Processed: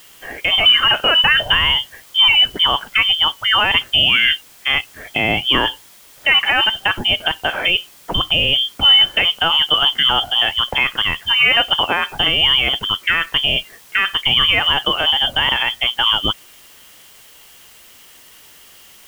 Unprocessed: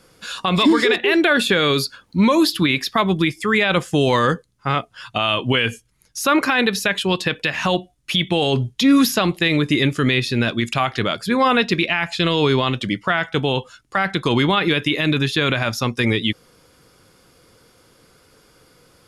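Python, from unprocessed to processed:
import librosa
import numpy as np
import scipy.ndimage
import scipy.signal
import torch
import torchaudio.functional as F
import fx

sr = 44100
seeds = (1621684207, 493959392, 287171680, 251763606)

y = fx.freq_invert(x, sr, carrier_hz=3300)
y = fx.dmg_noise_colour(y, sr, seeds[0], colour='white', level_db=-48.0)
y = F.gain(torch.from_numpy(y), 2.5).numpy()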